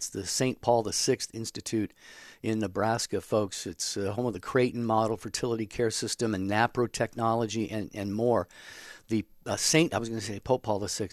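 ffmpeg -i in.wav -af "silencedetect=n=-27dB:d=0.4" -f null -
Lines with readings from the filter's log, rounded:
silence_start: 1.85
silence_end: 2.45 | silence_duration: 0.60
silence_start: 8.42
silence_end: 9.12 | silence_duration: 0.70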